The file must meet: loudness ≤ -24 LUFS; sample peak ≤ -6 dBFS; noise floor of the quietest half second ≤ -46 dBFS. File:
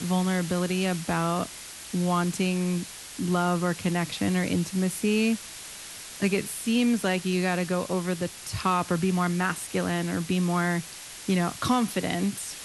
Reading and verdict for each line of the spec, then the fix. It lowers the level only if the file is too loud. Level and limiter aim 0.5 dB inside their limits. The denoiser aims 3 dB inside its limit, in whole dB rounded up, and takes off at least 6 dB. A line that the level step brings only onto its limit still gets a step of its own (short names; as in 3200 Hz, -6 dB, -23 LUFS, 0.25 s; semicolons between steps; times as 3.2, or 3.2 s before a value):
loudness -27.0 LUFS: OK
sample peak -11.5 dBFS: OK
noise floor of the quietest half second -41 dBFS: fail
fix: denoiser 8 dB, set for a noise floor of -41 dBFS